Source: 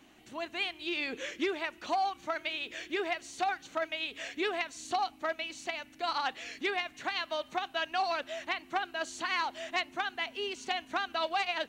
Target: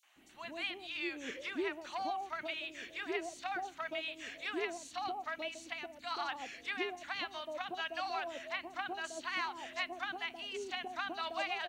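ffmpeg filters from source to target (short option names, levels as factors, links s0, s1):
-filter_complex "[0:a]acrossover=split=750|4500[s0][s1][s2];[s1]adelay=30[s3];[s0]adelay=160[s4];[s4][s3][s2]amix=inputs=3:normalize=0,volume=0.631"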